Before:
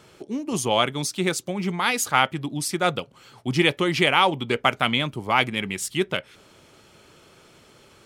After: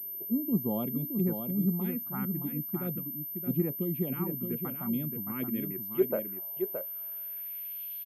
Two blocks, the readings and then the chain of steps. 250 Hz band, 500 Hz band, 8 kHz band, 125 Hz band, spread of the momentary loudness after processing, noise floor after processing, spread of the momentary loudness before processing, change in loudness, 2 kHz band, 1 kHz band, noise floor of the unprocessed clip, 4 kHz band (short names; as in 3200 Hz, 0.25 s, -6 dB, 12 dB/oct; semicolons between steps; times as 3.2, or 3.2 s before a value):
-3.0 dB, -8.5 dB, under -40 dB, -4.0 dB, 7 LU, -39 dBFS, 8 LU, -9.0 dB, -27.0 dB, -22.5 dB, -54 dBFS, under -30 dB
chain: vocal rider within 4 dB 2 s; band-pass sweep 210 Hz -> 3300 Hz, 5.25–7.98; envelope phaser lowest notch 170 Hz, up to 3300 Hz, full sweep at -24.5 dBFS; on a send: echo 0.62 s -6.5 dB; on the sum: pulse-width modulation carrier 13000 Hz